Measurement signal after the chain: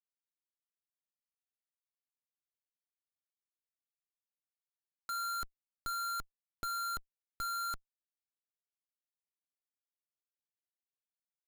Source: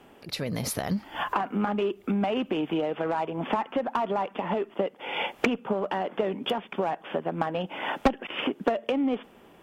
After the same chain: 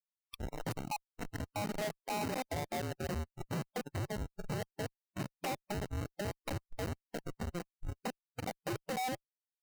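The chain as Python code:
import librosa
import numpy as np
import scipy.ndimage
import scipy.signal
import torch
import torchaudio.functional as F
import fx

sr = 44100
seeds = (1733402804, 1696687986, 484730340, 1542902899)

y = fx.band_invert(x, sr, width_hz=1000)
y = fx.schmitt(y, sr, flips_db=-23.5)
y = fx.noise_reduce_blind(y, sr, reduce_db=23)
y = y * librosa.db_to_amplitude(-5.5)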